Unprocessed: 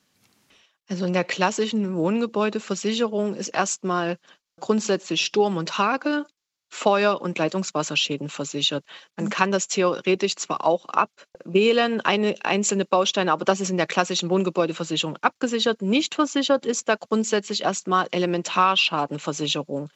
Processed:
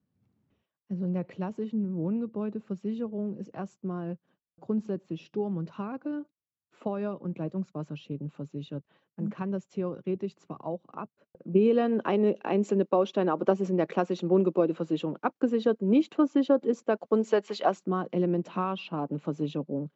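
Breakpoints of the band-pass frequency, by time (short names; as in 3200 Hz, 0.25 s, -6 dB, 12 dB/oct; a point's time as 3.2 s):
band-pass, Q 0.92
11 s 100 Hz
11.93 s 310 Hz
16.95 s 310 Hz
17.61 s 880 Hz
17.89 s 210 Hz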